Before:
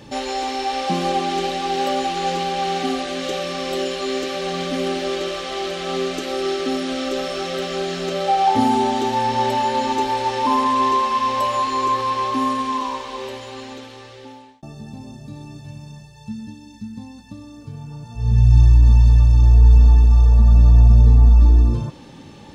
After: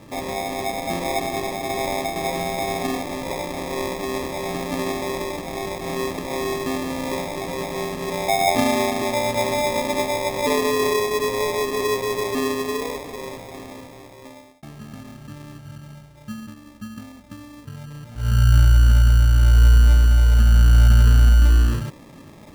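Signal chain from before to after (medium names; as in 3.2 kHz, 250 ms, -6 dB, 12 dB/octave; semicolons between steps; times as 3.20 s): 0.72–2.16 s: high-pass 280 Hz 6 dB/octave; sample-and-hold 30×; trim -2.5 dB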